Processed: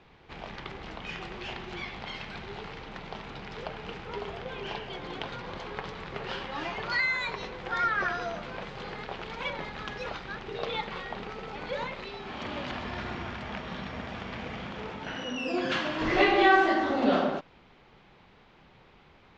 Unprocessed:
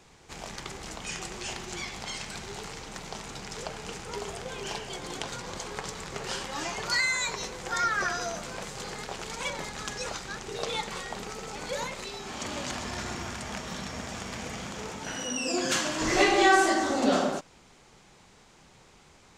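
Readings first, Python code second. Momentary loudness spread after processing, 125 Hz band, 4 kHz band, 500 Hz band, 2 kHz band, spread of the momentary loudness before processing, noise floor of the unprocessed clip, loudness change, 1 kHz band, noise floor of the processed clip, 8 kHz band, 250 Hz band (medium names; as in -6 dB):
15 LU, 0.0 dB, -4.0 dB, 0.0 dB, 0.0 dB, 13 LU, -57 dBFS, -1.0 dB, 0.0 dB, -58 dBFS, -21.5 dB, 0.0 dB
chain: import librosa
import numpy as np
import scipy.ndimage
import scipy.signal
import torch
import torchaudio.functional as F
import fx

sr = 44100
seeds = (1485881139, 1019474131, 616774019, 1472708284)

y = scipy.signal.sosfilt(scipy.signal.butter(4, 3600.0, 'lowpass', fs=sr, output='sos'), x)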